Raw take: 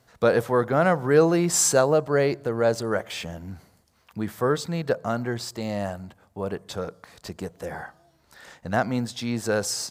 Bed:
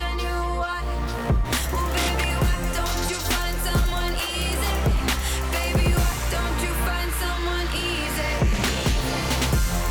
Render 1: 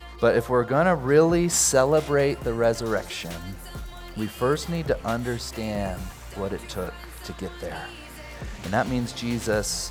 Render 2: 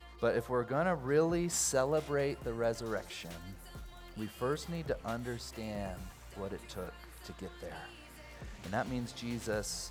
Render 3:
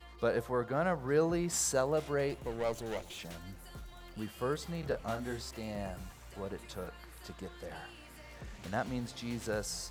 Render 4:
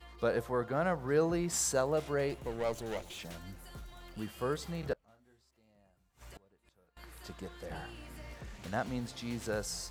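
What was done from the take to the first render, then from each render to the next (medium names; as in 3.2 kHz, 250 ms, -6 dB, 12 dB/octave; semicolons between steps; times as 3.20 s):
add bed -15.5 dB
trim -11.5 dB
2.29–3.19 s: comb filter that takes the minimum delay 0.3 ms; 4.80–5.51 s: doubling 28 ms -4.5 dB
4.93–6.97 s: inverted gate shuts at -39 dBFS, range -28 dB; 7.70–8.34 s: bass shelf 450 Hz +7.5 dB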